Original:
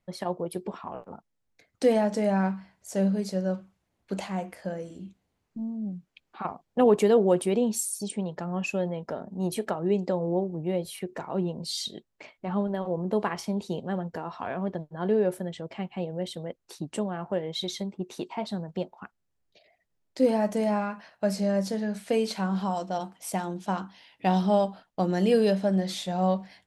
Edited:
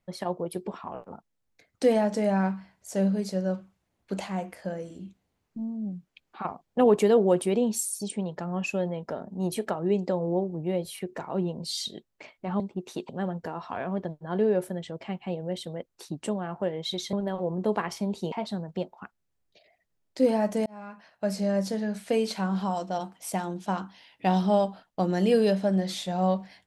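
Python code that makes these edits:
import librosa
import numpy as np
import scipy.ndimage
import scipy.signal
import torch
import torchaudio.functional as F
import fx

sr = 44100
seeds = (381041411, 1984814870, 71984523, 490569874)

y = fx.edit(x, sr, fx.swap(start_s=12.6, length_s=1.19, other_s=17.83, other_length_s=0.49),
    fx.fade_in_span(start_s=20.66, length_s=1.05, curve='qsin'), tone=tone)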